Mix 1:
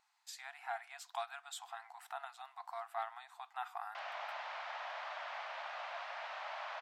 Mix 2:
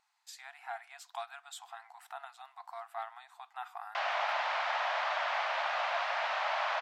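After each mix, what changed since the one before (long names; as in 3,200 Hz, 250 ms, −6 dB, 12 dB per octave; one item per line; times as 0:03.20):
background +11.5 dB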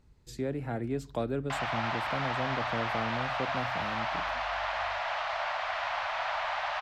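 speech: remove linear-phase brick-wall high-pass 680 Hz
background: entry −2.45 s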